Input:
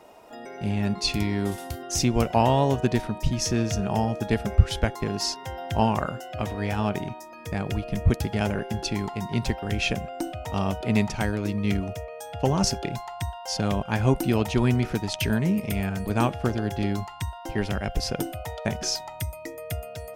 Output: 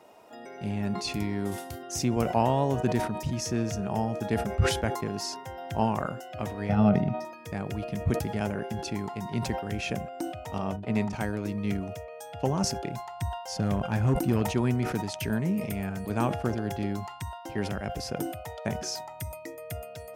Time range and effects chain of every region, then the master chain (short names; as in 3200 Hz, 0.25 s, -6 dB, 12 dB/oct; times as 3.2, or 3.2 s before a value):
6.69–7.25 polynomial smoothing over 15 samples + bell 210 Hz +12 dB 2 oct + comb 1.5 ms, depth 58%
10.58–11.13 gate -31 dBFS, range -37 dB + high shelf 8900 Hz -11.5 dB + notches 50/100/150/200/250/300/350/400 Hz
13.01–14.42 low shelf 160 Hz +8 dB + hard clip -13.5 dBFS
whole clip: HPF 93 Hz; dynamic EQ 3600 Hz, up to -6 dB, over -45 dBFS, Q 1; sustainer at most 73 dB/s; gain -4 dB